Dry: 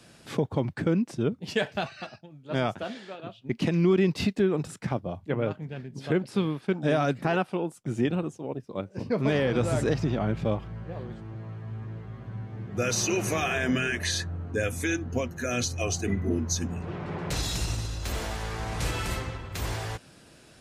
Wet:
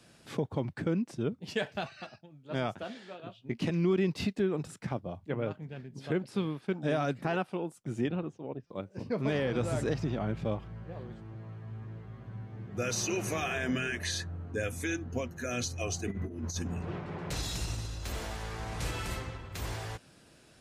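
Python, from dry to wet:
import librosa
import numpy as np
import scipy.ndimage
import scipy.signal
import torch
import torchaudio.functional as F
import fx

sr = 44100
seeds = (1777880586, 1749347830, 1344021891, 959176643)

y = fx.doubler(x, sr, ms=17.0, db=-8.0, at=(3.0, 3.7))
y = fx.lowpass(y, sr, hz=3800.0, slope=12, at=(8.08, 8.72))
y = fx.over_compress(y, sr, threshold_db=-30.0, ratio=-0.5, at=(16.1, 16.99), fade=0.02)
y = fx.buffer_glitch(y, sr, at_s=(8.67,), block=256, repeats=5)
y = F.gain(torch.from_numpy(y), -5.5).numpy()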